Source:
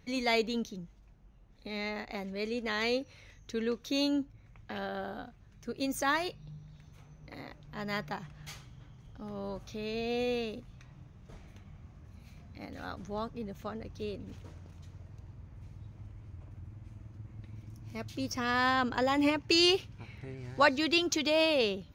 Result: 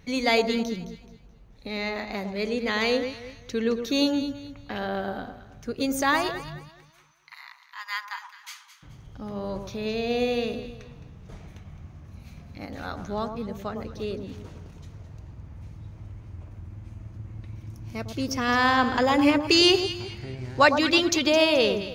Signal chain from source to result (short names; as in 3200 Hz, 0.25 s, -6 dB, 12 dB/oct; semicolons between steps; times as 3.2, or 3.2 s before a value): 6.58–8.83 Chebyshev high-pass 960 Hz, order 5; echo with dull and thin repeats by turns 0.107 s, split 1200 Hz, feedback 55%, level -7 dB; gain +6.5 dB